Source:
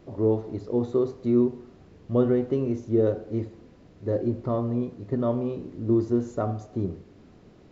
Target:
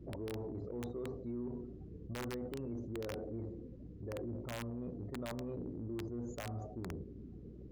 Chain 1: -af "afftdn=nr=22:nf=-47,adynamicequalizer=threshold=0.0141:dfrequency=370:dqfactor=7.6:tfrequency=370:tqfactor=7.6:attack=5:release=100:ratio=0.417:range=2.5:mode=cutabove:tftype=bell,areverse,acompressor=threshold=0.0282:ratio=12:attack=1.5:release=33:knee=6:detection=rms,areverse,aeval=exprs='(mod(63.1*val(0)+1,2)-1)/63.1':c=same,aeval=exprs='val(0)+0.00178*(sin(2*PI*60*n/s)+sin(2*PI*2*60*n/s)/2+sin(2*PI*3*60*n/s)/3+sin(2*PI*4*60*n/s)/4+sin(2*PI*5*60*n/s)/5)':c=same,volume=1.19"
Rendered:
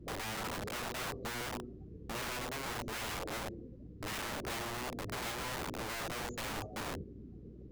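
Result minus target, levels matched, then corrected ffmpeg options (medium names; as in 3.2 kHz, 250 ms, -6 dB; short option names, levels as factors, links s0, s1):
compression: peak gain reduction -8.5 dB
-af "afftdn=nr=22:nf=-47,adynamicequalizer=threshold=0.0141:dfrequency=370:dqfactor=7.6:tfrequency=370:tqfactor=7.6:attack=5:release=100:ratio=0.417:range=2.5:mode=cutabove:tftype=bell,areverse,acompressor=threshold=0.01:ratio=12:attack=1.5:release=33:knee=6:detection=rms,areverse,aeval=exprs='(mod(63.1*val(0)+1,2)-1)/63.1':c=same,aeval=exprs='val(0)+0.00178*(sin(2*PI*60*n/s)+sin(2*PI*2*60*n/s)/2+sin(2*PI*3*60*n/s)/3+sin(2*PI*4*60*n/s)/4+sin(2*PI*5*60*n/s)/5)':c=same,volume=1.19"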